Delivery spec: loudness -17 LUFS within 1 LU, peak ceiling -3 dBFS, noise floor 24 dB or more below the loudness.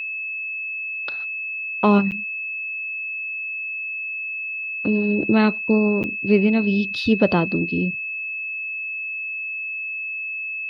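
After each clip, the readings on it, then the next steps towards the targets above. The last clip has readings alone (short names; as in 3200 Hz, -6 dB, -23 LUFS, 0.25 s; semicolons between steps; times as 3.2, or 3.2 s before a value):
dropouts 2; longest dropout 8.9 ms; steady tone 2600 Hz; tone level -26 dBFS; loudness -22.5 LUFS; peak -4.0 dBFS; loudness target -17.0 LUFS
-> interpolate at 2.11/6.03, 8.9 ms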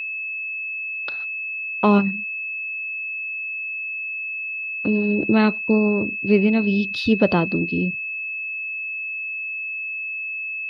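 dropouts 0; steady tone 2600 Hz; tone level -26 dBFS
-> notch 2600 Hz, Q 30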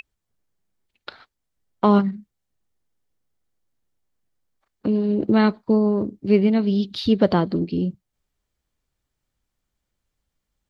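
steady tone none; loudness -20.5 LUFS; peak -5.0 dBFS; loudness target -17.0 LUFS
-> gain +3.5 dB; limiter -3 dBFS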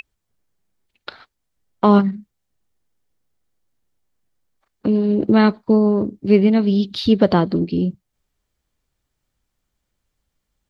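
loudness -17.5 LUFS; peak -3.0 dBFS; noise floor -77 dBFS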